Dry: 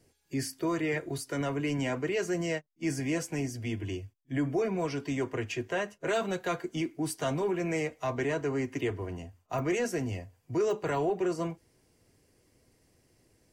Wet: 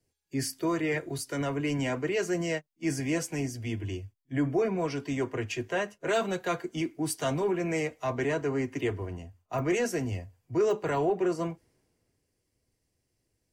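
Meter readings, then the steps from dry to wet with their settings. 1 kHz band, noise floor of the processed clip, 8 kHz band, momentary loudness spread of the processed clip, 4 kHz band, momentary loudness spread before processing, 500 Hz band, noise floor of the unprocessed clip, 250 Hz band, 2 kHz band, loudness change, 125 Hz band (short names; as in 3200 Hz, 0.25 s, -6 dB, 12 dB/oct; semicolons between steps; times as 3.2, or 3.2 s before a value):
+1.5 dB, -79 dBFS, +2.5 dB, 8 LU, +1.5 dB, 7 LU, +2.0 dB, -71 dBFS, +1.5 dB, +1.5 dB, +1.5 dB, +1.5 dB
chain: three-band expander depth 40%; gain +1.5 dB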